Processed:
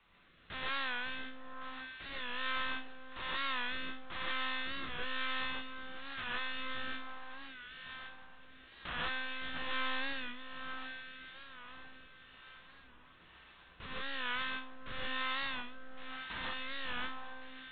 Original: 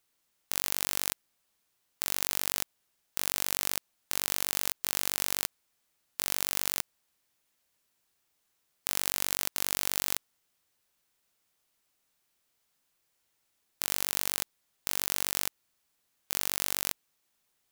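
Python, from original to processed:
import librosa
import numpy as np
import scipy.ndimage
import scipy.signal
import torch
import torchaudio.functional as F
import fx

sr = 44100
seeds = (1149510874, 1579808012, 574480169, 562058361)

p1 = fx.law_mismatch(x, sr, coded='mu')
p2 = fx.over_compress(p1, sr, threshold_db=-43.0, ratio=-1.0)
p3 = p1 + F.gain(torch.from_numpy(p2), 2.0).numpy()
p4 = fx.notch(p3, sr, hz=1300.0, q=26.0)
p5 = fx.resonator_bank(p4, sr, root=39, chord='sus4', decay_s=0.4)
p6 = fx.lpc_monotone(p5, sr, seeds[0], pitch_hz=260.0, order=8)
p7 = fx.peak_eq(p6, sr, hz=1300.0, db=7.5, octaves=0.91)
p8 = p7 + fx.echo_alternate(p7, sr, ms=557, hz=1200.0, feedback_pct=60, wet_db=-4.5, dry=0)
p9 = fx.rotary(p8, sr, hz=1.1)
p10 = fx.rev_gated(p9, sr, seeds[1], gate_ms=170, shape='rising', drr_db=-4.5)
p11 = fx.record_warp(p10, sr, rpm=45.0, depth_cents=100.0)
y = F.gain(torch.from_numpy(p11), 6.5).numpy()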